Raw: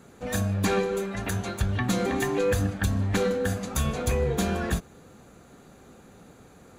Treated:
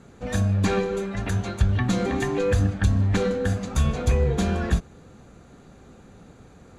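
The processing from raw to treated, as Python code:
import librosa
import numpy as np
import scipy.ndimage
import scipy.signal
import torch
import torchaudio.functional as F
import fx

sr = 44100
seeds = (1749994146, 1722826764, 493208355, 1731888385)

y = scipy.signal.sosfilt(scipy.signal.butter(2, 7800.0, 'lowpass', fs=sr, output='sos'), x)
y = fx.low_shelf(y, sr, hz=140.0, db=8.5)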